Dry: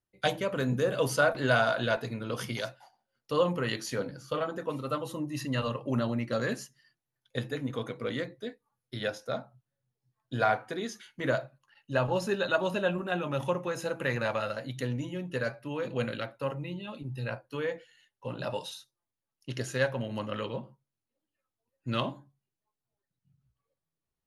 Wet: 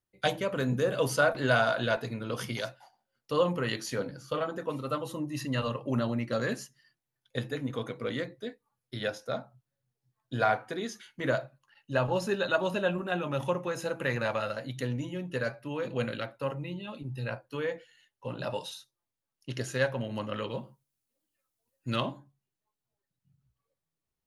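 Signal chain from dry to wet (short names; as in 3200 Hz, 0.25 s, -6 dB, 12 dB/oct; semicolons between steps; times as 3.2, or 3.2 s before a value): 20.5–21.96 high shelf 4900 Hz +11 dB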